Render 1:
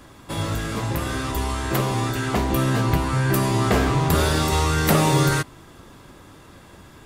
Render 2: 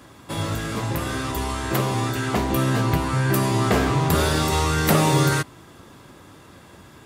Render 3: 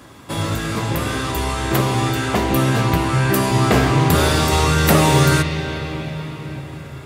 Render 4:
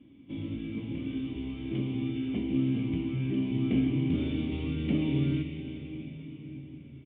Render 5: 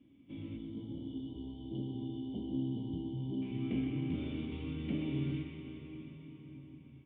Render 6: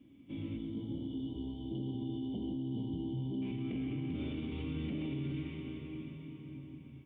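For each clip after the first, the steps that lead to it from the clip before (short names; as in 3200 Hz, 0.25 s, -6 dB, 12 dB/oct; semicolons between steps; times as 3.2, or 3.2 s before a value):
HPF 69 Hz
on a send at -9.5 dB: resonant high shelf 1800 Hz +8 dB, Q 1.5 + reverb RT60 6.0 s, pre-delay 52 ms; on the sum: gain +4 dB
vocal tract filter i; doubler 22 ms -12.5 dB; gain -4 dB
spectral gain 0.58–3.42, 1000–2900 Hz -29 dB; narrowing echo 0.125 s, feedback 81%, band-pass 1100 Hz, level -6 dB; gain -8 dB
limiter -34 dBFS, peak gain reduction 9.5 dB; gain +3.5 dB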